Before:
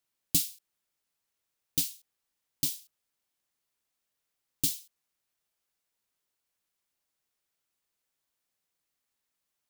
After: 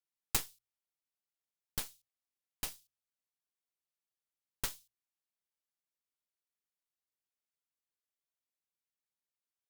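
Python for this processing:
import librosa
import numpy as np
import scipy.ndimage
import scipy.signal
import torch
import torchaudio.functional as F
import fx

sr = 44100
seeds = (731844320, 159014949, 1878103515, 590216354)

y = fx.hum_notches(x, sr, base_hz=60, count=2)
y = fx.cheby_harmonics(y, sr, harmonics=(3, 4), levels_db=(-8, -13), full_scale_db=-9.5)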